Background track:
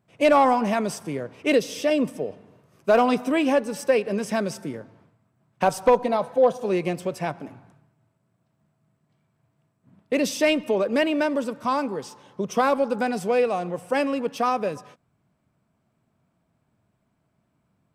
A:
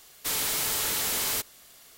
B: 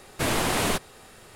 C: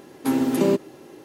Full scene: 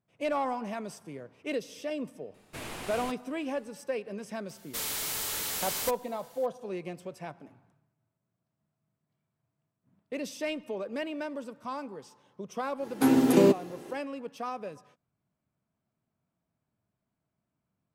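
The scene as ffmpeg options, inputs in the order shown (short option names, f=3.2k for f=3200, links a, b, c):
-filter_complex "[0:a]volume=-13dB[a];[2:a]equalizer=f=2.5k:t=o:w=0.52:g=4,atrim=end=1.35,asetpts=PTS-STARTPTS,volume=-16dB,afade=t=in:d=0.004:c=hsin,afade=t=out:st=1.346:d=0.004:c=hsin,adelay=2340[b];[1:a]atrim=end=1.97,asetpts=PTS-STARTPTS,volume=-5.5dB,afade=t=in:d=0.004:c=hsin,afade=t=out:st=1.966:d=0.004:c=hsin,adelay=198009S[c];[3:a]atrim=end=1.24,asetpts=PTS-STARTPTS,volume=-0.5dB,afade=t=in:d=0.1,afade=t=out:st=1.14:d=0.1,adelay=12760[d];[a][b][c][d]amix=inputs=4:normalize=0"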